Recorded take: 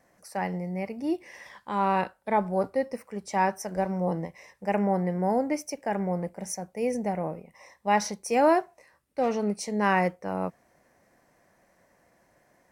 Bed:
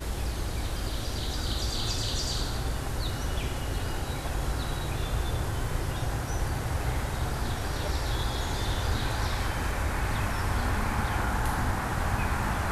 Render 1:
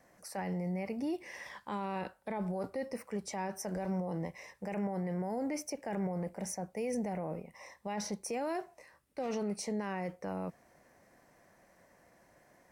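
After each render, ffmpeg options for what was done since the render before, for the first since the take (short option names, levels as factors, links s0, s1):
-filter_complex "[0:a]acrossover=split=660|1900[s0][s1][s2];[s0]acompressor=threshold=0.0398:ratio=4[s3];[s1]acompressor=threshold=0.0141:ratio=4[s4];[s2]acompressor=threshold=0.01:ratio=4[s5];[s3][s4][s5]amix=inputs=3:normalize=0,alimiter=level_in=1.68:limit=0.0631:level=0:latency=1:release=17,volume=0.596"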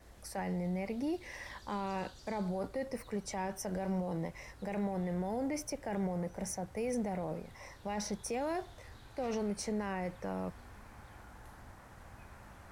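-filter_complex "[1:a]volume=0.0531[s0];[0:a][s0]amix=inputs=2:normalize=0"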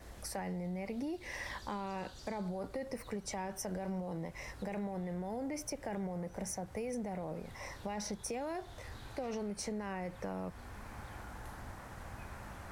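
-filter_complex "[0:a]asplit=2[s0][s1];[s1]alimiter=level_in=5.31:limit=0.0631:level=0:latency=1:release=474,volume=0.188,volume=0.944[s2];[s0][s2]amix=inputs=2:normalize=0,acompressor=threshold=0.0158:ratio=6"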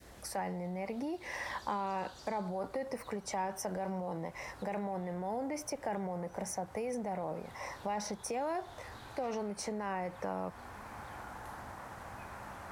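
-af "highpass=f=110:p=1,adynamicequalizer=threshold=0.00158:dfrequency=910:dqfactor=0.91:tfrequency=910:tqfactor=0.91:attack=5:release=100:ratio=0.375:range=3.5:mode=boostabove:tftype=bell"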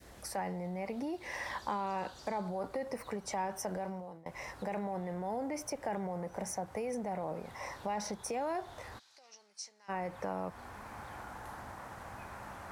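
-filter_complex "[0:a]asplit=3[s0][s1][s2];[s0]afade=t=out:st=8.98:d=0.02[s3];[s1]bandpass=f=5400:t=q:w=2.4,afade=t=in:st=8.98:d=0.02,afade=t=out:st=9.88:d=0.02[s4];[s2]afade=t=in:st=9.88:d=0.02[s5];[s3][s4][s5]amix=inputs=3:normalize=0,asplit=2[s6][s7];[s6]atrim=end=4.26,asetpts=PTS-STARTPTS,afade=t=out:st=3.75:d=0.51:silence=0.0749894[s8];[s7]atrim=start=4.26,asetpts=PTS-STARTPTS,afade=t=in:d=0.004:c=hsin:silence=0.0749894[s9];[s8][s9]concat=n=2:v=0:a=1"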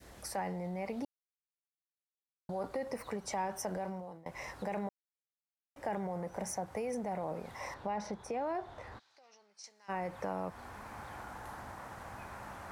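-filter_complex "[0:a]asettb=1/sr,asplit=3[s0][s1][s2];[s0]atrim=end=7.744[s3];[s1]atrim=start=7.74:end=9.64,asetpts=PTS-STARTPTS,afade=t=in:d=0.004:c=qsin,afade=t=out:st=1.896:d=0.004:c=qsin,aemphasis=mode=reproduction:type=75kf[s4];[s2]atrim=start=9.636[s5];[s3][s4]acrossfade=d=0.004:c1=hsin:c2=qsin[s6];[s6][s5]acrossfade=d=0.004:c1=qsin:c2=hsin,asplit=5[s7][s8][s9][s10][s11];[s7]atrim=end=1.05,asetpts=PTS-STARTPTS,afade=t=out:st=1.046:d=0.004:c=hsin[s12];[s8]atrim=start=1.05:end=2.49,asetpts=PTS-STARTPTS,volume=0[s13];[s9]atrim=start=2.49:end=4.89,asetpts=PTS-STARTPTS,afade=t=in:d=0.004:c=hsin,afade=t=out:st=2.396:d=0.004:c=hsin[s14];[s10]atrim=start=4.89:end=5.76,asetpts=PTS-STARTPTS,volume=0[s15];[s11]atrim=start=5.76,asetpts=PTS-STARTPTS,afade=t=in:d=0.004:c=hsin[s16];[s12][s13][s14][s15][s16]concat=n=5:v=0:a=1"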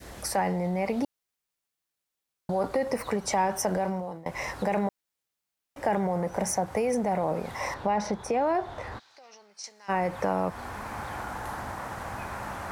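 -af "volume=3.35"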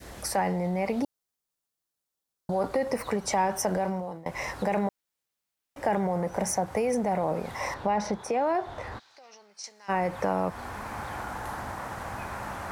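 -filter_complex "[0:a]asettb=1/sr,asplit=3[s0][s1][s2];[s0]atrim=end=1.024[s3];[s1]atrim=start=1.02:end=2.52,asetpts=PTS-STARTPTS,afade=t=in:d=0.004:c=qsin,afade=t=out:st=1.496:d=0.004:c=qsin,equalizer=f=2300:t=o:w=1.2:g=-6.5[s4];[s2]atrim=start=2.516[s5];[s3][s4]acrossfade=d=0.004:c1=hsin:c2=qsin[s6];[s6][s5]acrossfade=d=0.004:c1=qsin:c2=hsin,asettb=1/sr,asplit=3[s7][s8][s9];[s7]atrim=end=8.194[s10];[s8]atrim=start=8.19:end=8.67,asetpts=PTS-STARTPTS,afade=t=in:d=0.004:c=qsin,afade=t=out:st=0.476:d=0.004:c=qsin,highpass=f=200:p=1[s11];[s9]atrim=start=8.666[s12];[s10][s11]acrossfade=d=0.004:c1=hsin:c2=qsin[s13];[s13][s12]acrossfade=d=0.004:c1=qsin:c2=hsin"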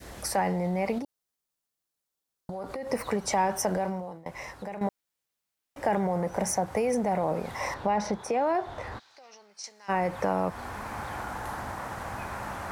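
-filter_complex "[0:a]asettb=1/sr,asplit=3[s0][s1][s2];[s0]atrim=end=0.984[s3];[s1]atrim=start=0.98:end=2.9,asetpts=PTS-STARTPTS,afade=t=in:d=0.004:c=qsin,afade=t=out:st=1.916:d=0.004:c=qsin,acompressor=threshold=0.0251:ratio=6:attack=3.2:release=140:knee=1:detection=peak[s4];[s2]atrim=start=2.896[s5];[s3][s4]acrossfade=d=0.004:c1=hsin:c2=qsin[s6];[s6][s5]acrossfade=d=0.004:c1=qsin:c2=hsin,asplit=2[s7][s8];[s7]atrim=end=4.81,asetpts=PTS-STARTPTS,afade=t=out:st=3.64:d=1.17:silence=0.223872[s9];[s8]atrim=start=4.81,asetpts=PTS-STARTPTS,afade=t=in:d=0.004:c=hsin:silence=0.223872[s10];[s9][s10]concat=n=2:v=0:a=1"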